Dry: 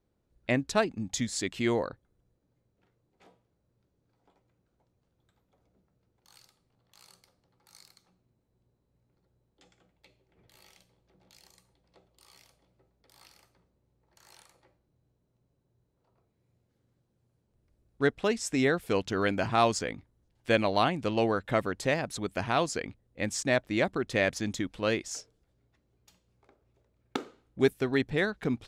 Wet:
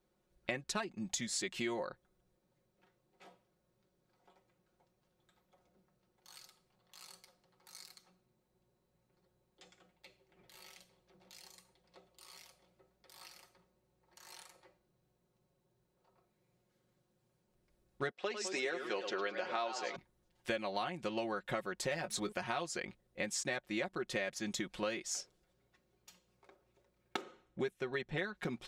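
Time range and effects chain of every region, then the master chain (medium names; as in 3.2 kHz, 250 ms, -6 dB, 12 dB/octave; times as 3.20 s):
18.11–19.96 s: Chebyshev band-pass 390–5100 Hz + modulated delay 106 ms, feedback 52%, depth 179 cents, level -10 dB
21.91–22.32 s: de-hum 213.1 Hz, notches 3 + waveshaping leveller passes 1 + doubling 19 ms -12 dB
27.21–28.35 s: distance through air 51 m + band-stop 4.7 kHz, Q 7.3
whole clip: bass shelf 310 Hz -9 dB; comb 5.5 ms, depth 71%; compression 6:1, threshold -36 dBFS; trim +1 dB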